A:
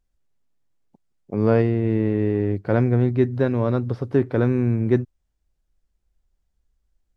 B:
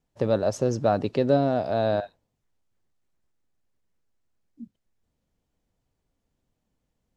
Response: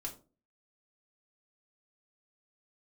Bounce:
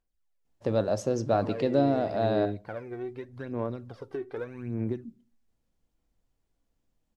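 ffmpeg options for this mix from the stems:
-filter_complex "[0:a]lowshelf=f=220:g=-11.5,acompressor=threshold=-26dB:ratio=5,aphaser=in_gain=1:out_gain=1:delay=2.7:decay=0.68:speed=0.83:type=sinusoidal,volume=-10dB,asplit=2[a][b];[b]volume=-14dB[c];[1:a]adelay=450,volume=-5dB,asplit=2[d][e];[e]volume=-7.5dB[f];[2:a]atrim=start_sample=2205[g];[c][f]amix=inputs=2:normalize=0[h];[h][g]afir=irnorm=-1:irlink=0[i];[a][d][i]amix=inputs=3:normalize=0"

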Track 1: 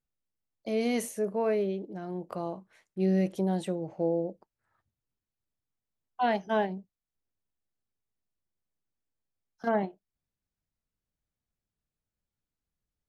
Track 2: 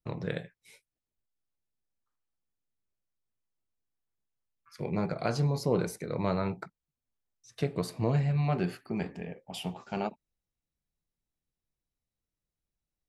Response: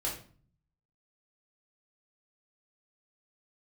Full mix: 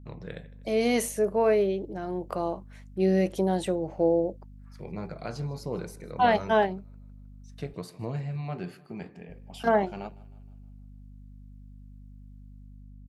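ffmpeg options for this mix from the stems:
-filter_complex "[0:a]equalizer=f=180:w=1.5:g=-5.5,dynaudnorm=f=220:g=5:m=12dB,aeval=exprs='val(0)+0.01*(sin(2*PI*50*n/s)+sin(2*PI*2*50*n/s)/2+sin(2*PI*3*50*n/s)/3+sin(2*PI*4*50*n/s)/4+sin(2*PI*5*50*n/s)/5)':c=same,volume=-6dB,asplit=3[a][b][c];[a]atrim=end=7.74,asetpts=PTS-STARTPTS,afade=t=out:st=7.736:d=0.004:c=hsin[d];[b]atrim=start=7.74:end=9.29,asetpts=PTS-STARTPTS,volume=0[e];[c]atrim=start=9.29,asetpts=PTS-STARTPTS,afade=t=in:d=0.004:c=hsin[f];[d][e][f]concat=n=3:v=0:a=1[g];[1:a]volume=-6dB,asplit=2[h][i];[i]volume=-21dB,aecho=0:1:156|312|468|624|780|936|1092:1|0.51|0.26|0.133|0.0677|0.0345|0.0176[j];[g][h][j]amix=inputs=3:normalize=0"

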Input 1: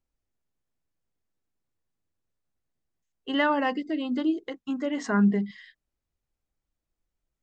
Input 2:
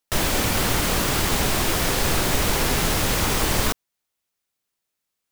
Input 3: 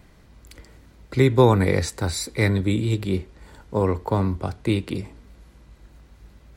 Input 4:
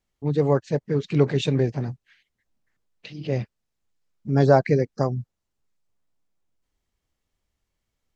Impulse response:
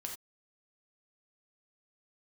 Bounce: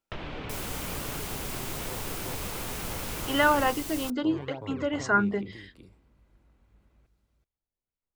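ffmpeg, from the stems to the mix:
-filter_complex "[0:a]highpass=330,equalizer=f=1.4k:w=7.9:g=9.5,volume=2dB[a];[1:a]highshelf=f=5.7k:g=9.5,volume=-7dB,asplit=2[b][c];[c]volume=-12.5dB[d];[2:a]acompressor=threshold=-25dB:ratio=2,adelay=500,volume=-13.5dB,asplit=2[e][f];[f]volume=-9.5dB[g];[3:a]acrusher=samples=19:mix=1:aa=0.000001:lfo=1:lforange=30.4:lforate=2.1,volume=-16.5dB[h];[b][e][h]amix=inputs=3:normalize=0,lowpass=f=3k:w=0.5412,lowpass=f=3k:w=1.3066,acompressor=threshold=-34dB:ratio=6,volume=0dB[i];[d][g]amix=inputs=2:normalize=0,aecho=0:1:377:1[j];[a][i][j]amix=inputs=3:normalize=0,equalizer=f=1.8k:t=o:w=0.38:g=-3.5"

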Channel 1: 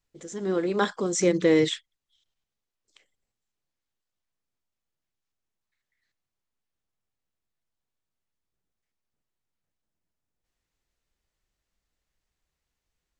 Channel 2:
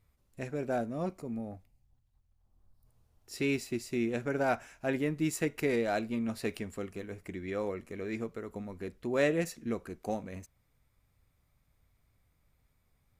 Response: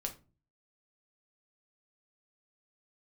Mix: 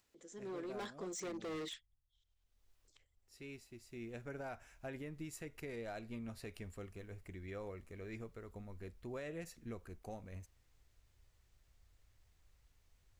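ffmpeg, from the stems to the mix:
-filter_complex "[0:a]highpass=f=200:w=0.5412,highpass=f=200:w=1.3066,acompressor=mode=upward:threshold=-47dB:ratio=2.5,asoftclip=type=hard:threshold=-25dB,volume=-15.5dB[a];[1:a]asubboost=boost=5:cutoff=93,volume=-9.5dB,afade=t=in:st=3.75:d=0.79:silence=0.334965[b];[a][b]amix=inputs=2:normalize=0,alimiter=level_in=12.5dB:limit=-24dB:level=0:latency=1:release=168,volume=-12.5dB"

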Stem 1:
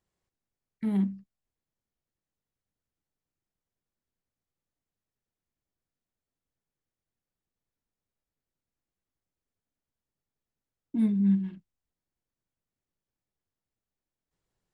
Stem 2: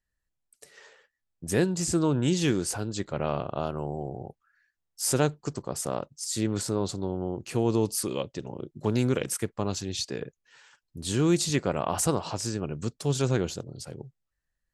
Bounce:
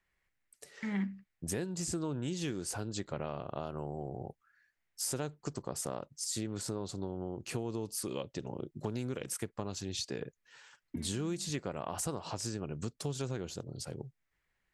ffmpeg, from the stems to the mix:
-filter_complex "[0:a]alimiter=limit=-22.5dB:level=0:latency=1:release=184,crystalizer=i=9.5:c=0,lowpass=f=2k:t=q:w=3.2,volume=-5dB[a];[1:a]acompressor=threshold=-32dB:ratio=6,volume=-1.5dB,asplit=2[b][c];[c]apad=whole_len=649989[d];[a][d]sidechaincompress=threshold=-55dB:ratio=8:attack=36:release=167[e];[e][b]amix=inputs=2:normalize=0"

